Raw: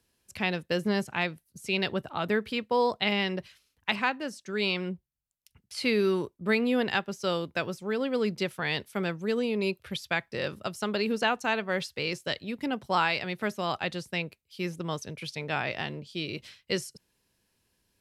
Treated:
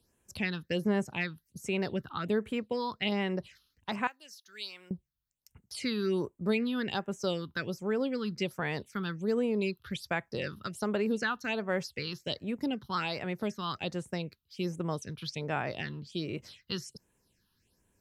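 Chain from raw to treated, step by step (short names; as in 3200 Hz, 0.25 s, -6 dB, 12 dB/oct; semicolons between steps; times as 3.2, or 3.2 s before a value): 4.07–4.91 differentiator; in parallel at -1 dB: compressor, threshold -37 dBFS, peak gain reduction 15.5 dB; on the sum: phaser stages 6, 1.3 Hz, lowest notch 570–4700 Hz; gain -3.5 dB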